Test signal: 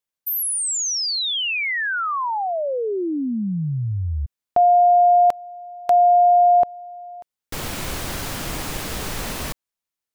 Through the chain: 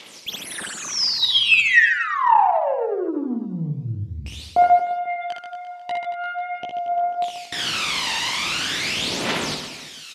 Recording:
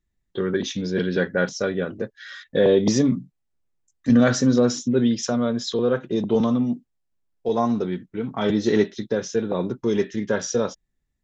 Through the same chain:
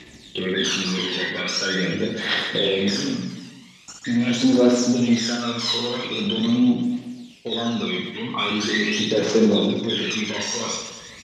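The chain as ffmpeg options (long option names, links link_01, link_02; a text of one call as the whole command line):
ffmpeg -i in.wav -af "areverse,acompressor=mode=upward:threshold=-24dB:ratio=2.5:attack=2.7:release=49:knee=2.83:detection=peak,areverse,alimiter=limit=-16dB:level=0:latency=1:release=31,acompressor=threshold=-22dB:ratio=6:attack=11:release=35:knee=6,aexciter=amount=4.8:drive=8.8:freq=2200,flanger=delay=16.5:depth=3.3:speed=1.2,aeval=exprs='(tanh(14.1*val(0)+0.2)-tanh(0.2))/14.1':channel_layout=same,aphaser=in_gain=1:out_gain=1:delay=1.1:decay=0.75:speed=0.43:type=triangular,highpass=210,lowpass=2800,aecho=1:1:60|135|228.8|345.9|492.4:0.631|0.398|0.251|0.158|0.1,volume=5.5dB" -ar 48000 -c:a mp2 -b:a 192k out.mp2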